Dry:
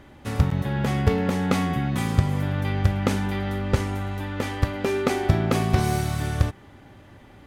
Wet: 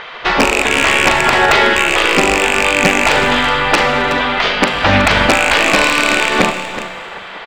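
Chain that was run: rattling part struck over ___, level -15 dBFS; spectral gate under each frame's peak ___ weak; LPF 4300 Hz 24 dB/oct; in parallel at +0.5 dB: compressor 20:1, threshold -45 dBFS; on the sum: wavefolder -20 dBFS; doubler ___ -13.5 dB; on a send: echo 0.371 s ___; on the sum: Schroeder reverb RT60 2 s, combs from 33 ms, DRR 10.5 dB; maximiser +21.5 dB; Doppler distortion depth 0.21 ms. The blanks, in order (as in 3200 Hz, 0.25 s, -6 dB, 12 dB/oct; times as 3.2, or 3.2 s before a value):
-21 dBFS, -15 dB, 41 ms, -14.5 dB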